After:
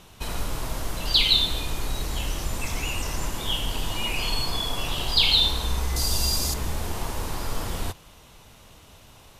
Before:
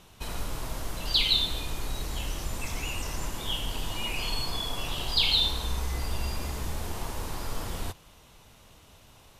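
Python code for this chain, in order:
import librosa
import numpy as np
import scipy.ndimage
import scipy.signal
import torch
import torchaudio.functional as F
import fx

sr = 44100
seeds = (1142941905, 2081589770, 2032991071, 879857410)

y = fx.high_shelf_res(x, sr, hz=3500.0, db=10.5, q=1.5, at=(5.96, 6.54))
y = F.gain(torch.from_numpy(y), 4.5).numpy()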